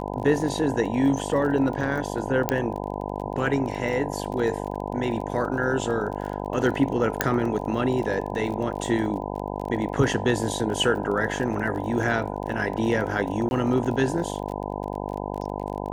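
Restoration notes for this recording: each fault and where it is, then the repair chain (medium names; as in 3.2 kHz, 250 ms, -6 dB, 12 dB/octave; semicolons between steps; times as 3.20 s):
buzz 50 Hz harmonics 20 -31 dBFS
crackle 28 per s -32 dBFS
2.49 s: pop -6 dBFS
7.21 s: pop -4 dBFS
13.49–13.51 s: dropout 21 ms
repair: de-click; de-hum 50 Hz, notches 20; interpolate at 13.49 s, 21 ms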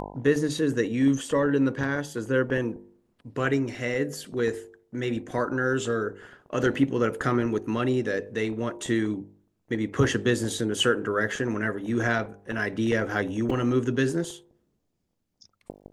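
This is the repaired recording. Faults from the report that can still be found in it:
nothing left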